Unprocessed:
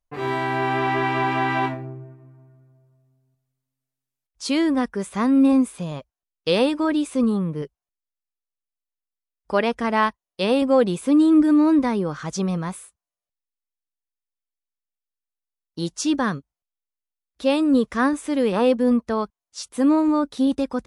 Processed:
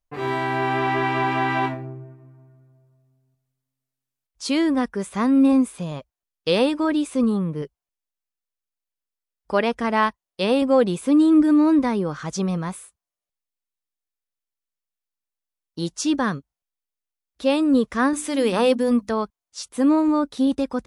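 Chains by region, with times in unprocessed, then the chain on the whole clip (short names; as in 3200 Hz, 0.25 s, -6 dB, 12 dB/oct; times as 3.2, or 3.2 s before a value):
18.13–19.11 high shelf 2900 Hz +9 dB + notches 50/100/150/200/250/300 Hz
whole clip: dry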